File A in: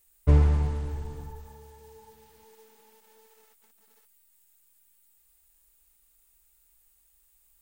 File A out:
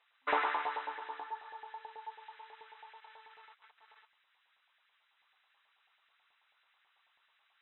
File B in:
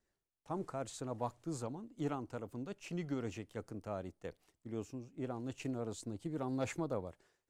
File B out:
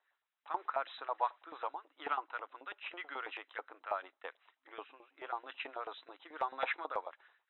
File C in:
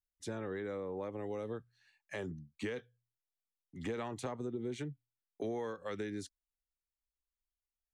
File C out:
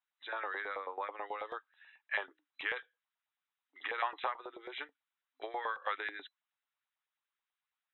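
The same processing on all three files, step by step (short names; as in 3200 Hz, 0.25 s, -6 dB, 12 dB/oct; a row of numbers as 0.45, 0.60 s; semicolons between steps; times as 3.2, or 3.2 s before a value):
FFT band-pass 260–4000 Hz; LFO high-pass saw up 9.2 Hz 790–1800 Hz; gain +6 dB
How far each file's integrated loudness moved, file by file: -12.0, +1.0, +1.5 LU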